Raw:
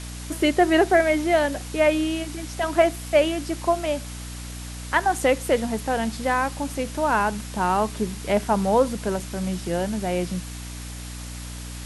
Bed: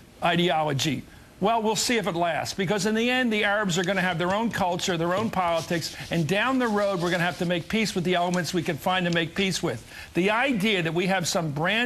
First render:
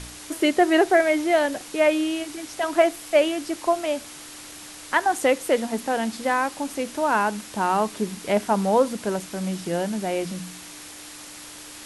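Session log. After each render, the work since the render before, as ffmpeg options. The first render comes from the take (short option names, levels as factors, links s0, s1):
-af "bandreject=f=60:t=h:w=4,bandreject=f=120:t=h:w=4,bandreject=f=180:t=h:w=4,bandreject=f=240:t=h:w=4"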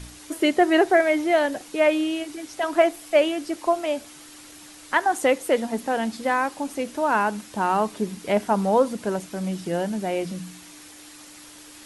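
-af "afftdn=nr=6:nf=-41"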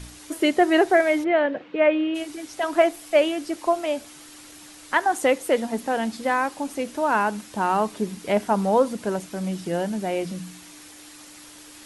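-filter_complex "[0:a]asplit=3[s0][s1][s2];[s0]afade=t=out:st=1.23:d=0.02[s3];[s1]highpass=110,equalizer=f=180:t=q:w=4:g=5,equalizer=f=500:t=q:w=4:g=6,equalizer=f=770:t=q:w=4:g=-5,lowpass=f=2900:w=0.5412,lowpass=f=2900:w=1.3066,afade=t=in:st=1.23:d=0.02,afade=t=out:st=2.14:d=0.02[s4];[s2]afade=t=in:st=2.14:d=0.02[s5];[s3][s4][s5]amix=inputs=3:normalize=0"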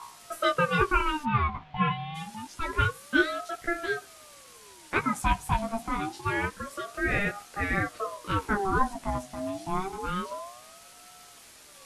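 -af "flanger=delay=15:depth=2.5:speed=0.78,aeval=exprs='val(0)*sin(2*PI*730*n/s+730*0.4/0.27*sin(2*PI*0.27*n/s))':c=same"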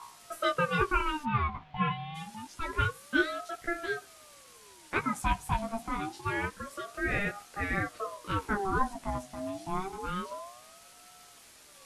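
-af "volume=0.668"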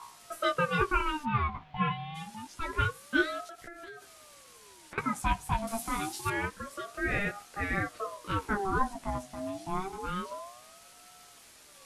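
-filter_complex "[0:a]asettb=1/sr,asplit=3[s0][s1][s2];[s0]atrim=end=3.454[s3];[s1]atrim=start=3.45:end=4.98,asetpts=PTS-STARTPTS,afade=t=in:d=0.004:c=qsin,afade=t=out:st=1.526:d=0.004:c=qsin,acompressor=threshold=0.00891:ratio=16:attack=3.2:release=140:knee=1:detection=peak[s4];[s2]atrim=start=4.976[s5];[s3][s4]acrossfade=d=0.004:c1=hsin:c2=qsin[s6];[s6][s5]acrossfade=d=0.004:c1=qsin:c2=hsin,asettb=1/sr,asplit=3[s7][s8][s9];[s7]atrim=end=5.674[s10];[s8]atrim=start=5.67:end=6.3,asetpts=PTS-STARTPTS,afade=t=in:d=0.004:c=qsin,afade=t=out:st=0.626:d=0.004:c=qsin,aemphasis=mode=production:type=75kf[s11];[s9]atrim=start=6.296[s12];[s10][s11]acrossfade=d=0.004:c1=hsin:c2=qsin[s13];[s13][s12]acrossfade=d=0.004:c1=qsin:c2=hsin"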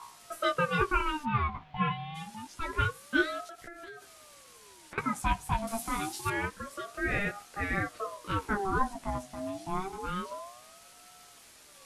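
-af anull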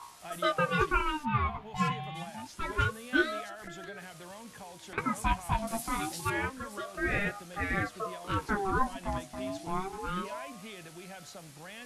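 -filter_complex "[1:a]volume=0.0708[s0];[0:a][s0]amix=inputs=2:normalize=0"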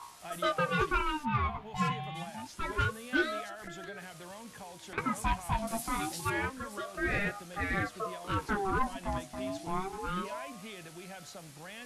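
-af "asoftclip=type=tanh:threshold=0.106"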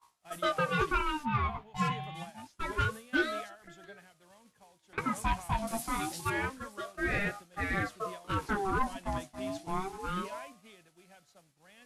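-af "agate=range=0.0224:threshold=0.0158:ratio=3:detection=peak"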